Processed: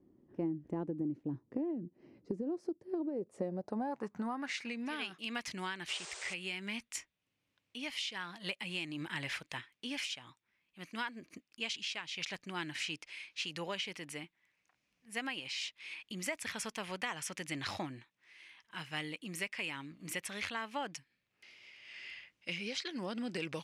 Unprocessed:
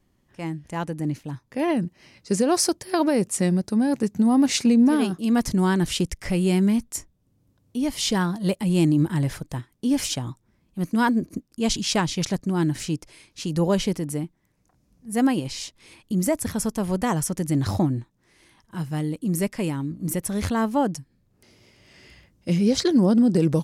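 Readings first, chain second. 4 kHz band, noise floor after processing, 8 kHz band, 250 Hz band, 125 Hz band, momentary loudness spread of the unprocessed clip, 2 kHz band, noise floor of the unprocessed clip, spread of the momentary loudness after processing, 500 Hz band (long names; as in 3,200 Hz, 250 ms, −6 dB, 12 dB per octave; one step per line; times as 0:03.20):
−8.0 dB, −83 dBFS, −16.0 dB, −20.5 dB, −23.5 dB, 14 LU, −5.0 dB, −67 dBFS, 9 LU, −17.0 dB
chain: band-pass filter sweep 330 Hz → 2,500 Hz, 0:02.99–0:04.84
downward compressor 10 to 1, threshold −39 dBFS, peak gain reduction 19.5 dB
sound drawn into the spectrogram noise, 0:05.88–0:06.34, 330–9,100 Hz −50 dBFS
speech leveller within 4 dB 0.5 s
low-shelf EQ 120 Hz +5.5 dB
level +5 dB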